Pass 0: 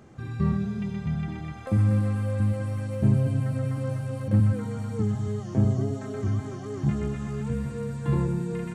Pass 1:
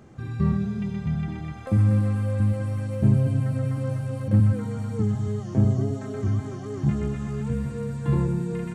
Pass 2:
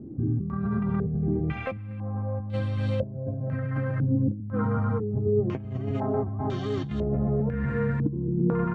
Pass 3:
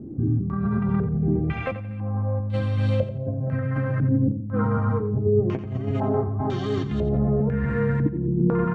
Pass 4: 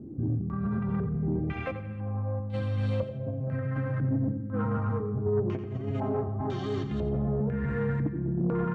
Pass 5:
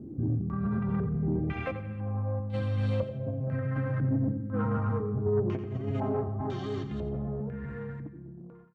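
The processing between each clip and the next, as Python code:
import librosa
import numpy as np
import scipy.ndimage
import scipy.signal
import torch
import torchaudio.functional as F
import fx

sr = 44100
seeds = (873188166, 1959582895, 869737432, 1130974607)

y1 = fx.low_shelf(x, sr, hz=340.0, db=2.5)
y2 = fx.over_compress(y1, sr, threshold_db=-29.0, ratio=-1.0)
y2 = fx.filter_held_lowpass(y2, sr, hz=2.0, low_hz=300.0, high_hz=3600.0)
y3 = fx.echo_feedback(y2, sr, ms=88, feedback_pct=33, wet_db=-12)
y3 = y3 * librosa.db_to_amplitude(3.5)
y4 = fx.rev_freeverb(y3, sr, rt60_s=1.6, hf_ratio=0.6, predelay_ms=45, drr_db=14.0)
y4 = fx.cheby_harmonics(y4, sr, harmonics=(5,), levels_db=(-23,), full_scale_db=-8.5)
y4 = y4 * librosa.db_to_amplitude(-8.0)
y5 = fx.fade_out_tail(y4, sr, length_s=2.74)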